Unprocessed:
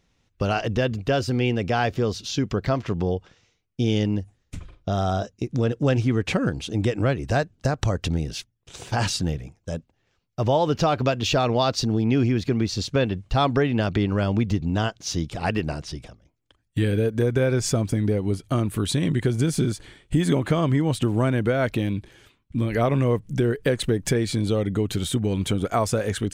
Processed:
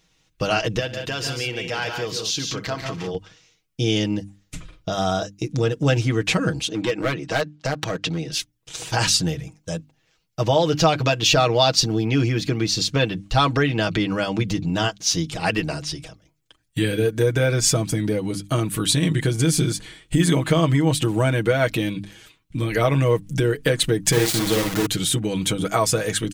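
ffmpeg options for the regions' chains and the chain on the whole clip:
-filter_complex "[0:a]asettb=1/sr,asplit=3[a][b][c];[a]atrim=end=0.794[d];[b]atrim=start=0.79:end=3.15,asetpts=PTS-STARTPTS,afade=t=in:d=0.004:c=qsin,afade=t=out:st=2.356:d=0.004:c=qsin,lowshelf=f=430:g=-7,acompressor=threshold=-33dB:ratio=1.5:attack=3.2:release=140:knee=1:detection=peak,aecho=1:1:63|141|178:0.158|0.473|0.422,atrim=end_sample=104076[e];[c]atrim=start=3.146[f];[d][e]acrossfade=d=0.004:c1=hsin:c2=qsin[g];[g][f]acrossfade=d=0.004:c1=qsin:c2=hsin,asettb=1/sr,asplit=3[h][i][j];[h]atrim=end=6.684[k];[i]atrim=start=6.68:end=8.32,asetpts=PTS-STARTPTS,afade=t=in:d=0.004:c=qsin,afade=t=out:st=1.636:d=0.004:c=qsin,highpass=170,lowpass=4.6k,asoftclip=type=hard:threshold=-19dB[l];[j]atrim=start=8.316[m];[k][l]acrossfade=d=0.004:c1=hsin:c2=qsin[n];[n][m]acrossfade=d=0.004:c1=qsin:c2=hsin,asettb=1/sr,asplit=3[o][p][q];[o]atrim=end=24.124[r];[p]atrim=start=24.12:end=24.86,asetpts=PTS-STARTPTS,afade=t=in:d=0.004:c=qsin,afade=t=out:st=0.736:d=0.004:c=qsin,asplit=2[s][t];[t]adelay=50,volume=-5dB[u];[s][u]amix=inputs=2:normalize=0,atrim=end_sample=32634,aeval=exprs='val(0)*gte(abs(val(0)),0.0596)':c=same[v];[q]atrim=start=24.856[w];[r][v]acrossfade=d=0.004:c1=hsin:c2=qsin[x];[x][w]acrossfade=d=0.004:c1=qsin:c2=hsin,highshelf=f=2k:g=8.5,bandreject=f=50:t=h:w=6,bandreject=f=100:t=h:w=6,bandreject=f=150:t=h:w=6,bandreject=f=200:t=h:w=6,bandreject=f=250:t=h:w=6,bandreject=f=300:t=h:w=6,aecho=1:1:6.3:0.65"

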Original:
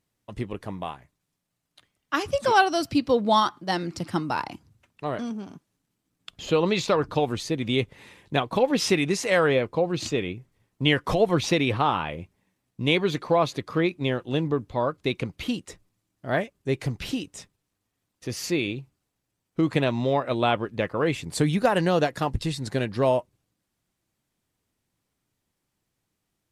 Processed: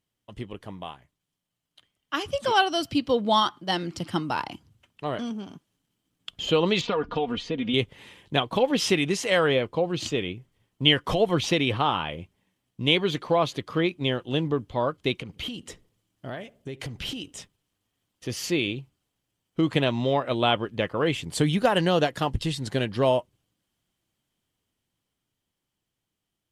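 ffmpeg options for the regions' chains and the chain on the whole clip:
-filter_complex "[0:a]asettb=1/sr,asplit=3[a][b][c];[a]atrim=end=6.814[d];[b]atrim=start=6.81:end=7.74,asetpts=PTS-STARTPTS,afade=t=in:d=0.004:c=qsin,afade=t=out:st=0.926:d=0.004:c=qsin,lowpass=3.2k,aecho=1:1:4.2:0.72,atrim=end_sample=41013,acompressor=threshold=-23dB:ratio=3:attack=3.2:release=140:knee=1:detection=peak[e];[c]atrim=start=7.736[f];[d][e]acrossfade=d=0.004:c1=hsin:c2=qsin[g];[g][f]acrossfade=d=0.004:c1=qsin:c2=hsin,asettb=1/sr,asplit=3[h][i][j];[h]atrim=end=15.164[k];[i]atrim=start=15.16:end=17.33,asetpts=PTS-STARTPTS,afade=t=in:d=0.004:c=qsin,afade=t=out:st=2.166:d=0.004:c=qsin,acompressor=threshold=-32dB:ratio=10:attack=3.2:release=140:knee=1:detection=peak,asplit=2[l][m];[m]adelay=73,lowpass=f=1.1k:p=1,volume=-20dB,asplit=2[n][o];[o]adelay=73,lowpass=f=1.1k:p=1,volume=0.49,asplit=2[p][q];[q]adelay=73,lowpass=f=1.1k:p=1,volume=0.49,asplit=2[r][s];[s]adelay=73,lowpass=f=1.1k:p=1,volume=0.49[t];[l][n][p][r][t]amix=inputs=5:normalize=0,atrim=end_sample=95697[u];[j]atrim=start=17.326[v];[k][u]acrossfade=d=0.004:c1=hsin:c2=qsin[w];[w][v]acrossfade=d=0.004:c1=qsin:c2=hsin,dynaudnorm=f=590:g=9:m=7dB,equalizer=f=3.1k:t=o:w=0.21:g=10.5,volume=-5dB"

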